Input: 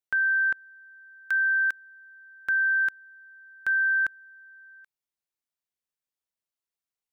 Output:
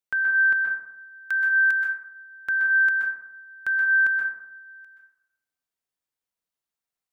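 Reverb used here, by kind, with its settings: plate-style reverb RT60 0.82 s, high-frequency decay 0.35×, pre-delay 115 ms, DRR 0 dB

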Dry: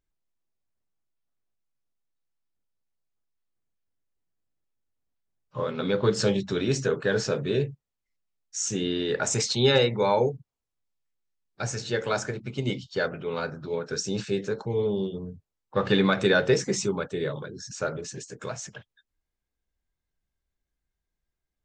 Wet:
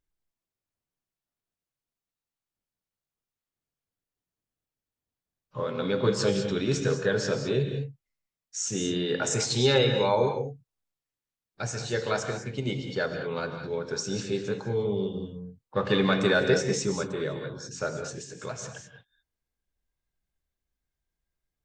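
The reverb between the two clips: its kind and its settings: gated-style reverb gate 230 ms rising, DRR 6 dB; trim -2 dB

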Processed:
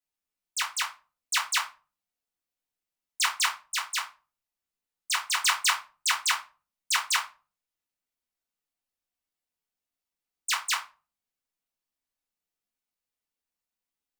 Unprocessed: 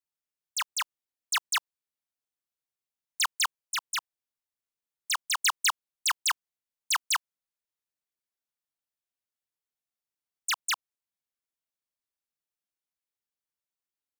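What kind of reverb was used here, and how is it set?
simulated room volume 190 m³, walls furnished, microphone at 1.9 m; trim -1.5 dB

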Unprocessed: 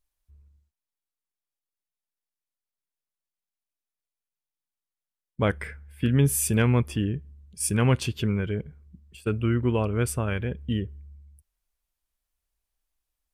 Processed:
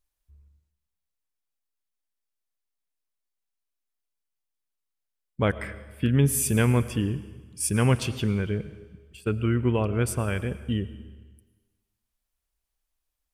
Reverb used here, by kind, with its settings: algorithmic reverb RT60 1.3 s, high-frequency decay 1×, pre-delay 65 ms, DRR 14.5 dB

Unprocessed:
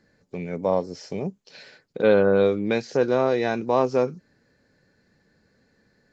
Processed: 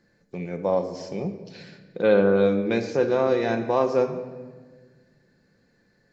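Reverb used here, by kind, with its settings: simulated room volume 1400 m³, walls mixed, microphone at 0.85 m; trim -2 dB

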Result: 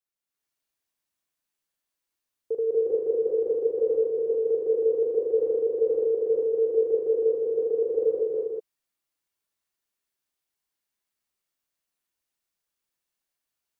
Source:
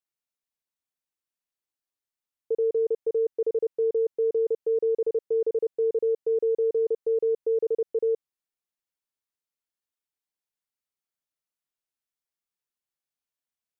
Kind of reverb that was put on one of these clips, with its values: gated-style reverb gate 460 ms rising, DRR -7.5 dB; trim -1.5 dB

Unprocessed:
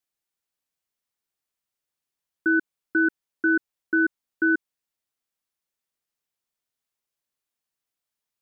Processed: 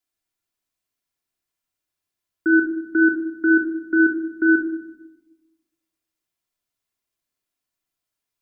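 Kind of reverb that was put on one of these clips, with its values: simulated room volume 3100 m³, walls furnished, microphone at 3.1 m

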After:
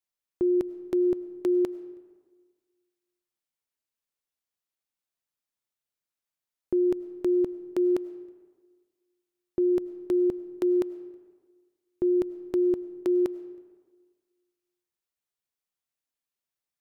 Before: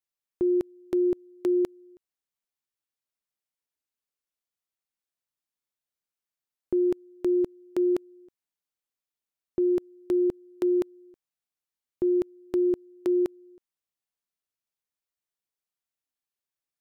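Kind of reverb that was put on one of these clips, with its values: algorithmic reverb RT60 1.5 s, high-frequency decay 0.6×, pre-delay 60 ms, DRR 16.5 dB

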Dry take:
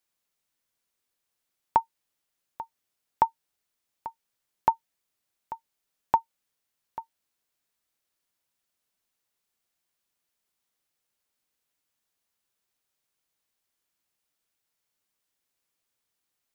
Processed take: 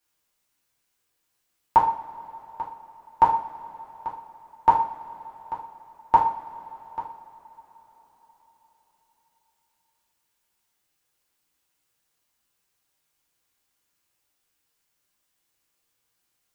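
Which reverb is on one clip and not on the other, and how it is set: two-slope reverb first 0.49 s, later 4.9 s, from -22 dB, DRR -5.5 dB

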